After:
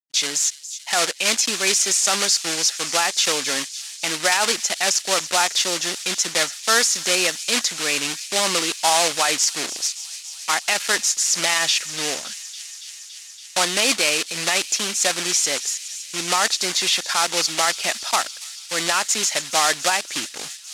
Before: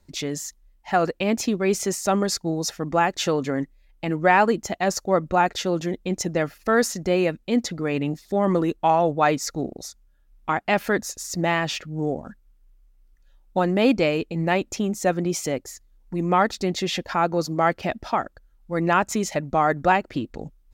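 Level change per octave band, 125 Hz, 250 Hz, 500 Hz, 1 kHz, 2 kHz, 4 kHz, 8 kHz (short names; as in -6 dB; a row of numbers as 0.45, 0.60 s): -14.0, -10.0, -5.0, -2.0, +5.5, +14.0, +15.0 dB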